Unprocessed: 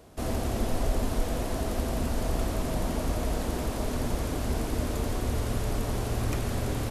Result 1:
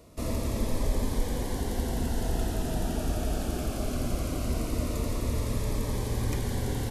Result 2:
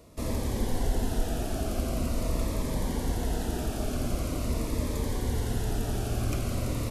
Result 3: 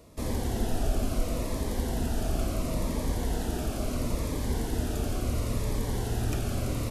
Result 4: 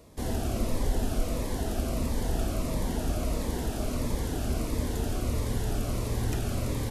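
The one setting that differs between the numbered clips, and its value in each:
Shepard-style phaser, rate: 0.2 Hz, 0.44 Hz, 0.73 Hz, 1.5 Hz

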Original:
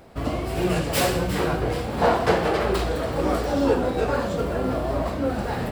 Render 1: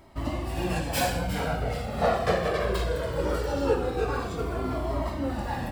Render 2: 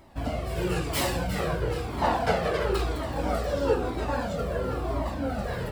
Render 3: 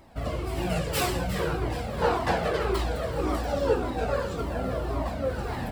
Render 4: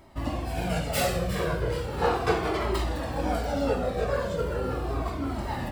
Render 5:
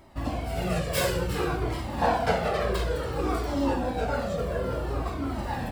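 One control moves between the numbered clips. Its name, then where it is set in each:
Shepard-style flanger, rate: 0.2 Hz, 1 Hz, 1.8 Hz, 0.37 Hz, 0.56 Hz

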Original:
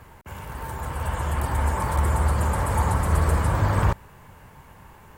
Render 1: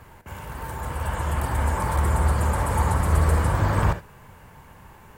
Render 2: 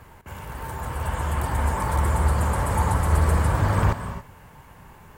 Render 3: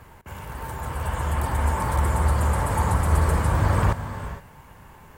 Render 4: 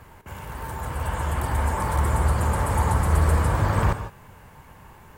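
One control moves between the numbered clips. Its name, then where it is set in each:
gated-style reverb, gate: 90 ms, 300 ms, 490 ms, 180 ms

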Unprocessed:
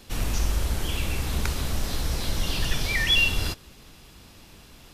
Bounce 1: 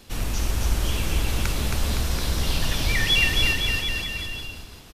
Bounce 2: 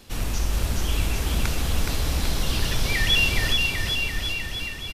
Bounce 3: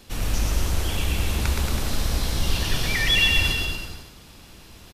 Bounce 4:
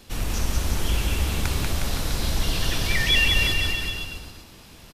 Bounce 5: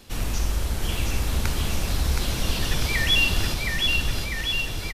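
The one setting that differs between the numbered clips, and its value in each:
bouncing-ball echo, first gap: 270 ms, 420 ms, 120 ms, 190 ms, 720 ms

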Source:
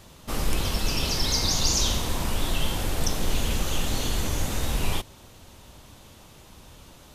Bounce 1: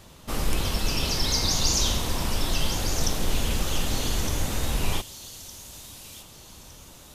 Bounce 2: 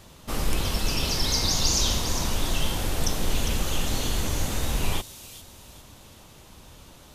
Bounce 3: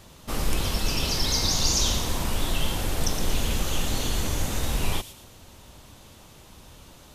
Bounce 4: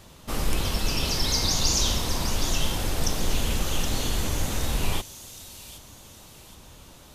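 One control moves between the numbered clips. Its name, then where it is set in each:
feedback echo behind a high-pass, time: 1211 ms, 403 ms, 114 ms, 769 ms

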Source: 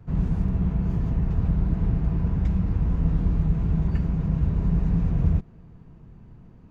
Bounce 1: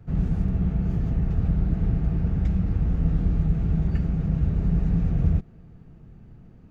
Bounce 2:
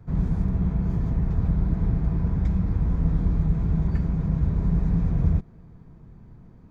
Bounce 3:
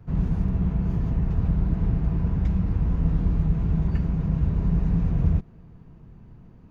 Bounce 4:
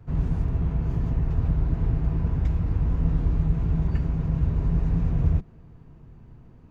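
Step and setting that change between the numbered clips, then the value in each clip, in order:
band-stop, frequency: 1 kHz, 2.8 kHz, 7.9 kHz, 190 Hz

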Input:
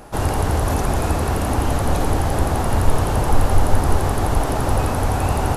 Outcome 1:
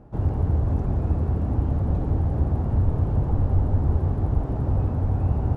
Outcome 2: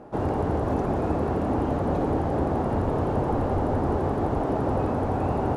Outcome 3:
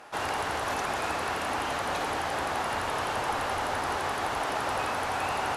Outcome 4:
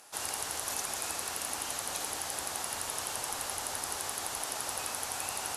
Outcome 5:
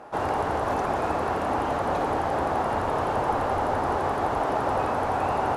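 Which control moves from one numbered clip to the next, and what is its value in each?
band-pass filter, frequency: 100 Hz, 330 Hz, 2.2 kHz, 7.5 kHz, 880 Hz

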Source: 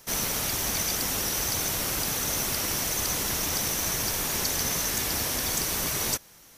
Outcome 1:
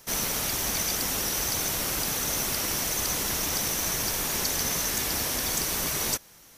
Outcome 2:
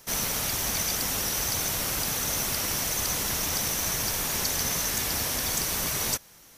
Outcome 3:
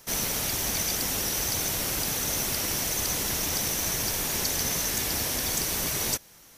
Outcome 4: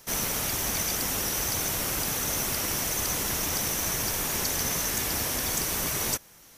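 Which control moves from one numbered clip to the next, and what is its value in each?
dynamic bell, frequency: 100 Hz, 340 Hz, 1.2 kHz, 4.3 kHz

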